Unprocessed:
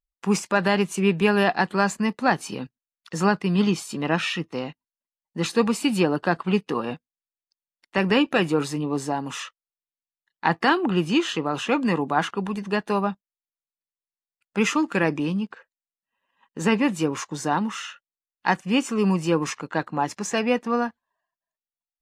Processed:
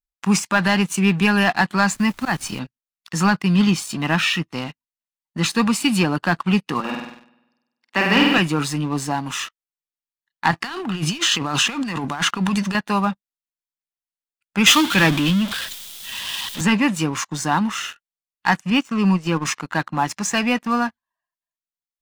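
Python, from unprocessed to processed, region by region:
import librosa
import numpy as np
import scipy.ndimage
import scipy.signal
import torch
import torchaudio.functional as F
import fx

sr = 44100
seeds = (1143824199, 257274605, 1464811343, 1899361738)

y = fx.auto_swell(x, sr, attack_ms=104.0, at=(1.94, 2.58), fade=0.02)
y = fx.dmg_noise_colour(y, sr, seeds[0], colour='pink', level_db=-50.0, at=(1.94, 2.58), fade=0.02)
y = fx.chain(y, sr, fx.highpass(hz=210.0, slope=24),
    fx.air_absorb(metres=72.0),
    fx.room_flutter(wall_m=8.4, rt60_s=1.1), at=(6.8, 8.38))
y = fx.chain(y, sr, fx.peak_eq(hz=5900.0, db=6.0, octaves=2.0),
    fx.over_compress(threshold_db=-28.0, ratio=-1.0), at=(10.51, 12.75))
y = fx.chain(y, sr, fx.zero_step(step_db=-26.5),
    fx.peak_eq(hz=3400.0, db=12.0, octaves=0.45),
    fx.band_widen(depth_pct=70), at=(14.66, 16.61))
y = fx.chain(y, sr, fx.transient(attack_db=-2, sustain_db=-8),
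    fx.air_absorb(metres=65.0), at=(18.7, 19.45))
y = fx.peak_eq(y, sr, hz=460.0, db=-12.5, octaves=1.1)
y = fx.leveller(y, sr, passes=2)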